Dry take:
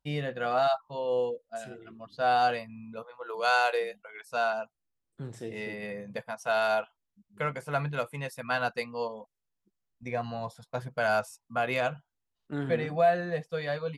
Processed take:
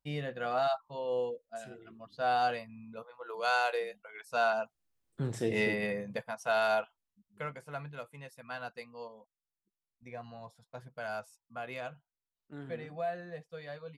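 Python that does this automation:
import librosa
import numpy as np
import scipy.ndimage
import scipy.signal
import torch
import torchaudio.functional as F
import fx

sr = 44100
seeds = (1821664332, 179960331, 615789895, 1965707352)

y = fx.gain(x, sr, db=fx.line((3.88, -4.5), (5.61, 8.0), (6.26, -2.0), (6.81, -2.0), (7.87, -12.0)))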